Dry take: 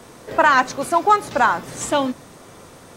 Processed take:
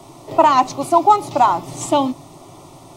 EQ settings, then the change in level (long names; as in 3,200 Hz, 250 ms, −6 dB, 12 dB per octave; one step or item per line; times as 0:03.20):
high-shelf EQ 3,600 Hz −7 dB
phaser with its sweep stopped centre 320 Hz, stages 8
+6.0 dB